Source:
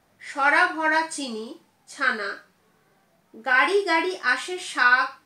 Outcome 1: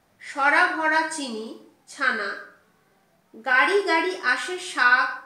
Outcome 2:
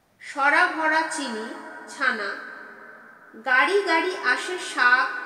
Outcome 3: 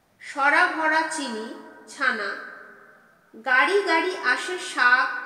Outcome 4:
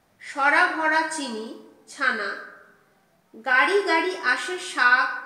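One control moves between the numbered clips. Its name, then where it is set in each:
dense smooth reverb, RT60: 0.52, 4.8, 2.3, 1.1 seconds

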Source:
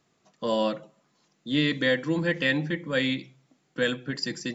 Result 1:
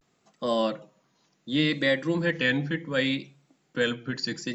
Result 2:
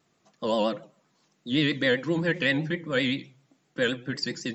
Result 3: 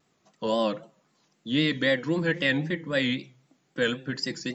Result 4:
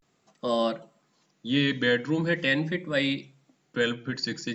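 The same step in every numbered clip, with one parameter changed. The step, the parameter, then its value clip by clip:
pitch vibrato, speed: 0.67, 7.7, 3.8, 0.42 Hertz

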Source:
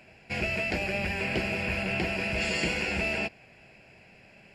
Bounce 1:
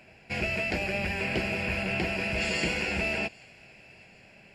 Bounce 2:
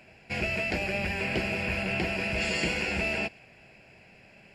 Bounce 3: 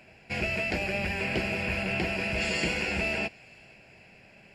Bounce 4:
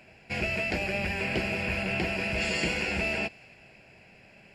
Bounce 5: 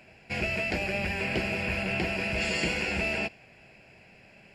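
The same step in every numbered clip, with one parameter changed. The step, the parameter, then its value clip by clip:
delay with a high-pass on its return, delay time: 786, 122, 469, 273, 82 milliseconds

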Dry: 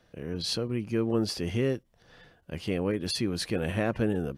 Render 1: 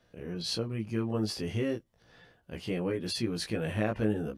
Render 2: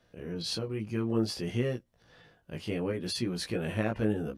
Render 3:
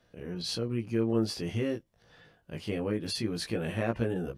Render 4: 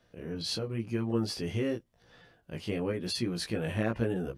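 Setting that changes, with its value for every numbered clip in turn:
chorus effect, speed: 0.38, 0.61, 0.21, 0.95 Hertz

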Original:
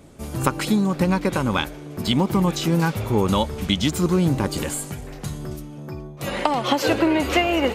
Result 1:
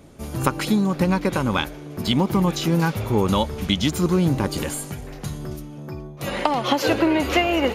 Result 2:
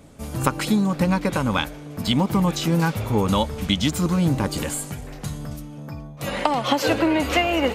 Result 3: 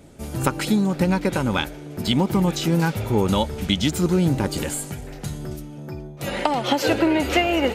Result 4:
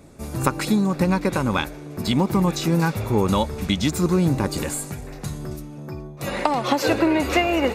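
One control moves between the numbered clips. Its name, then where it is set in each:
notch filter, centre frequency: 8,000, 370, 1,100, 3,100 Hertz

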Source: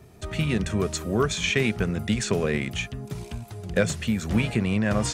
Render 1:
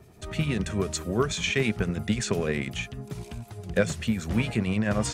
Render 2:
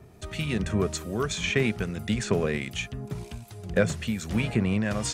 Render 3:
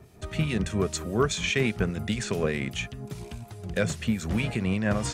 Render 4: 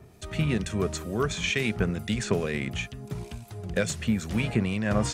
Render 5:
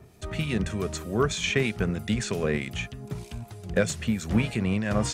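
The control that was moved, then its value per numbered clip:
two-band tremolo in antiphase, speed: 10, 1.3, 4.9, 2.2, 3.2 Hertz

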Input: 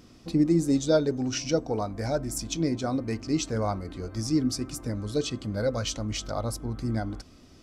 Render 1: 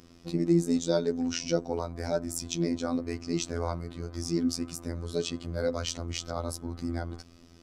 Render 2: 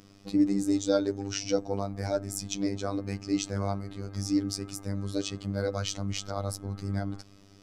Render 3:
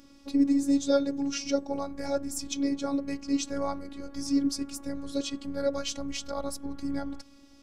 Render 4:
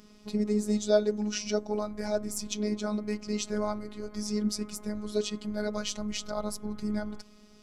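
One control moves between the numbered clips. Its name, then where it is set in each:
phases set to zero, frequency: 85, 99, 280, 210 Hertz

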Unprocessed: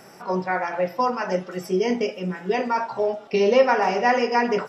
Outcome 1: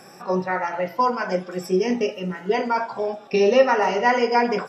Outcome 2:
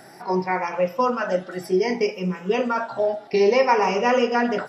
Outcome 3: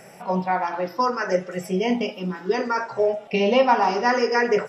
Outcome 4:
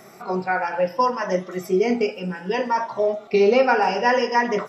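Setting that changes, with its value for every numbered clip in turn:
rippled gain that drifts along the octave scale, ripples per octave: 1.8, 0.8, 0.51, 1.2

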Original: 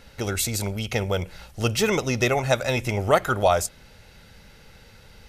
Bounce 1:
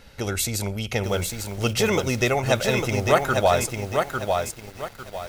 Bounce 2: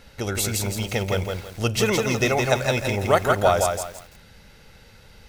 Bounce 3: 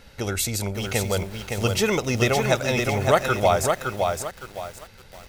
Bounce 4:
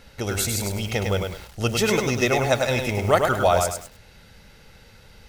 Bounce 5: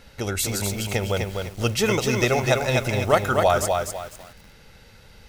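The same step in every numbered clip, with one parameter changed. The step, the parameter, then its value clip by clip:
feedback echo at a low word length, delay time: 850, 166, 563, 102, 250 milliseconds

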